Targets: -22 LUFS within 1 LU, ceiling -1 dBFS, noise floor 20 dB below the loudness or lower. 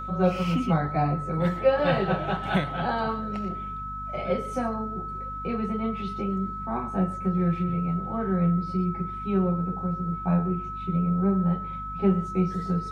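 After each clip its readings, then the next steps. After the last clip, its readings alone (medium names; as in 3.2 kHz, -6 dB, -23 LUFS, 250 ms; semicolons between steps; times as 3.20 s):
hum 50 Hz; highest harmonic 250 Hz; hum level -38 dBFS; steady tone 1.3 kHz; tone level -33 dBFS; loudness -27.0 LUFS; peak level -9.5 dBFS; loudness target -22.0 LUFS
-> de-hum 50 Hz, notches 5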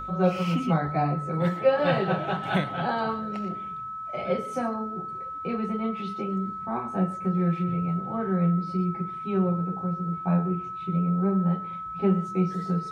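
hum not found; steady tone 1.3 kHz; tone level -33 dBFS
-> band-stop 1.3 kHz, Q 30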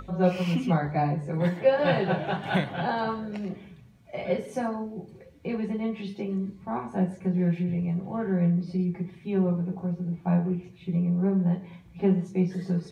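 steady tone not found; loudness -28.0 LUFS; peak level -10.0 dBFS; loudness target -22.0 LUFS
-> trim +6 dB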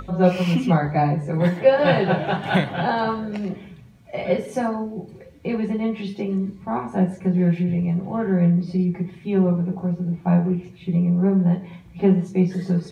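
loudness -22.0 LUFS; peak level -4.0 dBFS; noise floor -46 dBFS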